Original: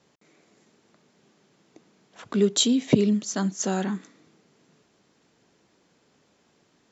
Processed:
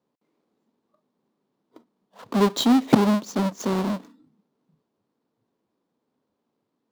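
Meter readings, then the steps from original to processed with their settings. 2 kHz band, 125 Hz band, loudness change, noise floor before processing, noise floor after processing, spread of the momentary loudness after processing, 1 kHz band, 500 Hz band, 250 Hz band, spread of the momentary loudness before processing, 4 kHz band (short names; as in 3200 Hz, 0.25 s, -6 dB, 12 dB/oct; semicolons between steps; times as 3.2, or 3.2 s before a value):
+3.0 dB, +1.0 dB, +2.0 dB, -66 dBFS, -79 dBFS, 10 LU, +9.5 dB, +1.0 dB, +3.0 dB, 10 LU, -2.0 dB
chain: half-waves squared off; spectral noise reduction 16 dB; graphic EQ 125/250/500/1000/4000 Hz +4/+12/+8/+11/+7 dB; gain -13 dB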